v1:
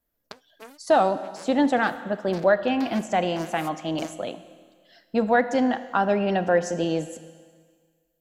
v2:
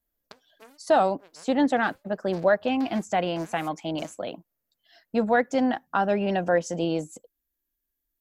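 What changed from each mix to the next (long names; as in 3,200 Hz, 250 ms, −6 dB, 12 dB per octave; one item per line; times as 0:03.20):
background −6.5 dB
reverb: off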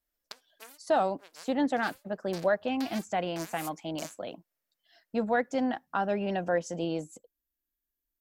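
speech −5.5 dB
background: add spectral tilt +3.5 dB per octave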